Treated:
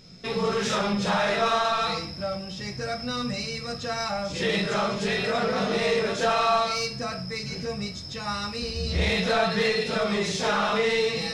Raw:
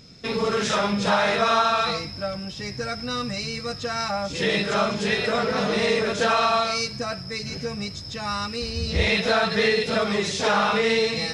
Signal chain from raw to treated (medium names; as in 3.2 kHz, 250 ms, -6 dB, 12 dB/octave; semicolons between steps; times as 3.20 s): saturation -15 dBFS, distortion -18 dB; simulated room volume 180 m³, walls furnished, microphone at 1 m; trim -3 dB